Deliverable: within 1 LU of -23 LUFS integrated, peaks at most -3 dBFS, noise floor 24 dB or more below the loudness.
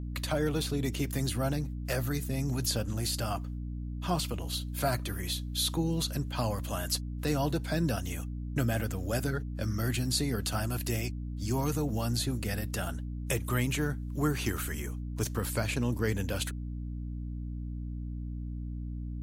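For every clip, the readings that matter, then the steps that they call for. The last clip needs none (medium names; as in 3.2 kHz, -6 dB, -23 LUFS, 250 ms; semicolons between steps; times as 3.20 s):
hum 60 Hz; highest harmonic 300 Hz; hum level -34 dBFS; loudness -32.5 LUFS; peak level -16.5 dBFS; loudness target -23.0 LUFS
-> de-hum 60 Hz, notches 5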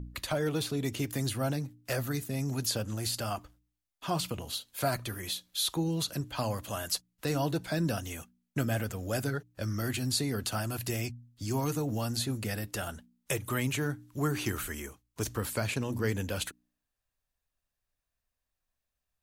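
hum not found; loudness -33.0 LUFS; peak level -16.5 dBFS; loudness target -23.0 LUFS
-> trim +10 dB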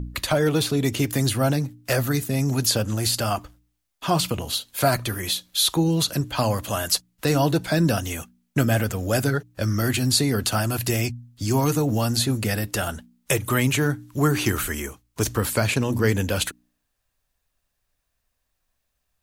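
loudness -23.0 LUFS; peak level -6.5 dBFS; noise floor -76 dBFS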